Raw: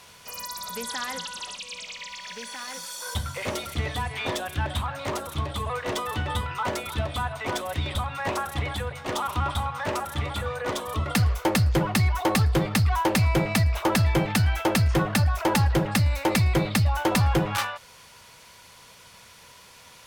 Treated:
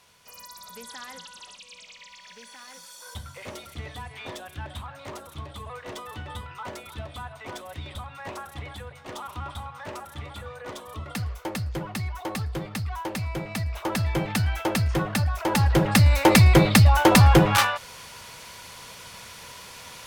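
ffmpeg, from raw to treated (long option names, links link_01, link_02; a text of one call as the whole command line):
ffmpeg -i in.wav -af "volume=7dB,afade=type=in:start_time=13.46:duration=0.88:silence=0.473151,afade=type=in:start_time=15.46:duration=0.76:silence=0.334965" out.wav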